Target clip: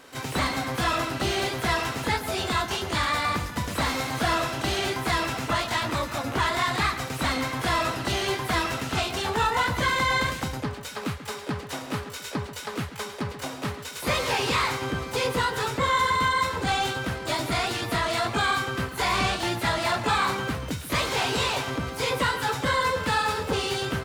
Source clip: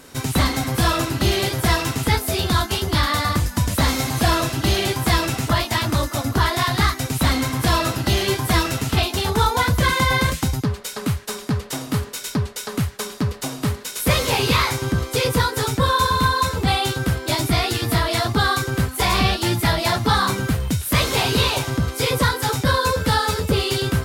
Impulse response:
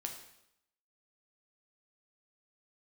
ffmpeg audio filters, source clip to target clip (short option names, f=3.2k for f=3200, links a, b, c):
-filter_complex "[0:a]asplit=2[a][b];[b]adelay=138,lowpass=f=2.9k:p=1,volume=-13.5dB,asplit=2[c][d];[d]adelay=138,lowpass=f=2.9k:p=1,volume=0.36,asplit=2[e][f];[f]adelay=138,lowpass=f=2.9k:p=1,volume=0.36[g];[a][c][e][g]amix=inputs=4:normalize=0,asplit=2[h][i];[i]highpass=f=720:p=1,volume=13dB,asoftclip=type=tanh:threshold=-5.5dB[j];[h][j]amix=inputs=2:normalize=0,lowpass=f=2.2k:p=1,volume=-6dB,asplit=2[k][l];[l]asetrate=88200,aresample=44100,atempo=0.5,volume=-9dB[m];[k][m]amix=inputs=2:normalize=0,volume=-8dB"